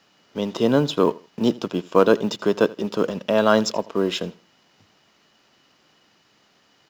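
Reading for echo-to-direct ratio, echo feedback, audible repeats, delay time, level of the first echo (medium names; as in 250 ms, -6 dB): -21.0 dB, 25%, 2, 82 ms, -21.5 dB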